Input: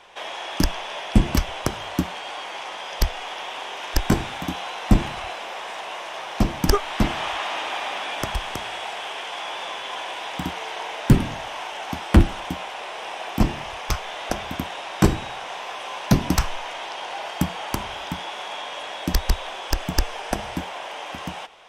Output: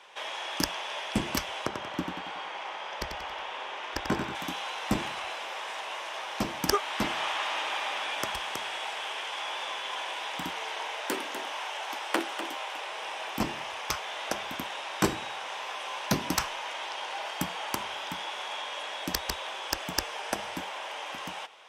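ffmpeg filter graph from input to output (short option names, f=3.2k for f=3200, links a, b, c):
-filter_complex "[0:a]asettb=1/sr,asplit=3[a][b][c];[a]atrim=end=1.664[d];[b]atrim=start=1.66:end=4.35,asetpts=PTS-STARTPTS,afade=t=in:d=0.004:c=qsin,afade=t=out:st=2.686:d=0.004:c=qsin,aemphasis=mode=reproduction:type=75kf,aecho=1:1:92|184|276|368|460|552:0.473|0.222|0.105|0.0491|0.0231|0.0109,atrim=end_sample=118629[e];[c]atrim=start=4.346[f];[d][e]acrossfade=d=0.004:c1=hsin:c2=qsin[g];[g][f]acrossfade=d=0.004:c1=qsin:c2=hsin,asettb=1/sr,asplit=3[h][i][j];[h]atrim=end=10.874[k];[i]atrim=start=10.87:end=12.87,asetpts=PTS-STARTPTS,afade=t=in:d=0.004:c=qsin,afade=t=out:st=1.996:d=0.004:c=qsin,highpass=f=340:w=0.5412,highpass=f=340:w=1.3066,aecho=1:1:247:0.316,atrim=end_sample=88200[l];[j]atrim=start=12.866[m];[k][l]acrossfade=d=0.004:c1=hsin:c2=qsin[n];[n][m]acrossfade=d=0.004:c1=qsin:c2=hsin,highpass=f=510:p=1,bandreject=f=710:w=12,volume=-2.5dB"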